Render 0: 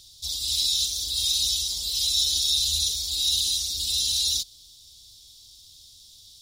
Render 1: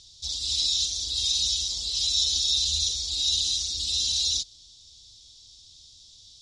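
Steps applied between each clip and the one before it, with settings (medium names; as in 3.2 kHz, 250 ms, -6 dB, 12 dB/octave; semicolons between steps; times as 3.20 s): Chebyshev low-pass 6.8 kHz, order 3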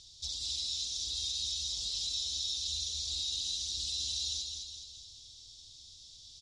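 compression 4:1, threshold -32 dBFS, peak gain reduction 10 dB; feedback delay 210 ms, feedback 51%, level -5 dB; trim -3.5 dB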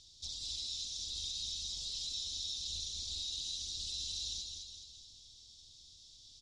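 octave divider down 2 oct, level -1 dB; loudspeaker Doppler distortion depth 0.1 ms; trim -4.5 dB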